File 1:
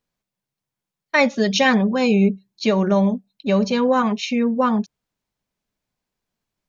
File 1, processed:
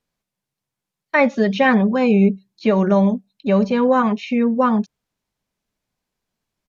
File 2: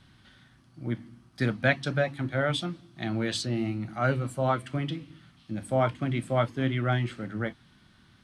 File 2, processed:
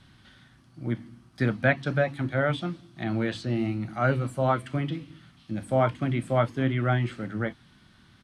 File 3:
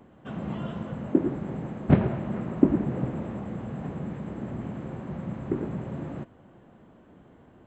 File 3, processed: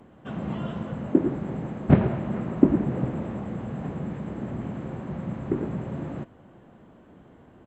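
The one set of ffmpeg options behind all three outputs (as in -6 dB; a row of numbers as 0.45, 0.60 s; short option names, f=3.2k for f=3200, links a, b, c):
-filter_complex "[0:a]acrossover=split=2600[a][b];[b]acompressor=threshold=-47dB:ratio=4:attack=1:release=60[c];[a][c]amix=inputs=2:normalize=0,aresample=32000,aresample=44100,volume=2dB"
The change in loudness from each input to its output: +1.5, +1.5, +2.0 LU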